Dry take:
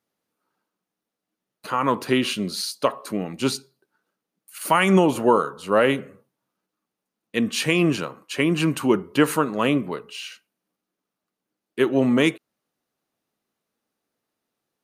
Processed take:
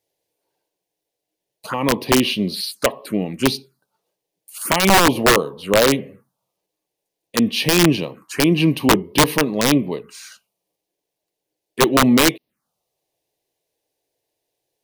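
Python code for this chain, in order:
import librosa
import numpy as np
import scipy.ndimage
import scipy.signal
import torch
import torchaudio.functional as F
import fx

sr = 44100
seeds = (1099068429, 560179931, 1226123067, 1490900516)

y = fx.env_phaser(x, sr, low_hz=220.0, high_hz=1400.0, full_db=-24.0)
y = (np.mod(10.0 ** (12.0 / 20.0) * y + 1.0, 2.0) - 1.0) / 10.0 ** (12.0 / 20.0)
y = y * librosa.db_to_amplitude(6.0)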